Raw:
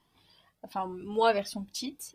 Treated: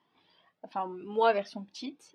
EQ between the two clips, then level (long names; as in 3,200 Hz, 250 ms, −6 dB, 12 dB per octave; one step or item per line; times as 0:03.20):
band-pass filter 220–3,200 Hz
0.0 dB